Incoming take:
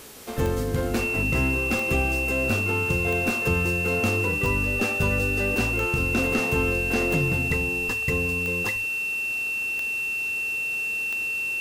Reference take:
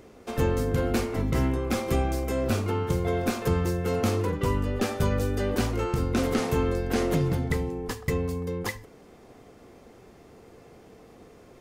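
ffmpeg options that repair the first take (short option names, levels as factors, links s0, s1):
-af "adeclick=t=4,bandreject=f=424.6:t=h:w=4,bandreject=f=849.2:t=h:w=4,bandreject=f=1273.8:t=h:w=4,bandreject=f=1698.4:t=h:w=4,bandreject=f=2700:w=30,afwtdn=0.0063"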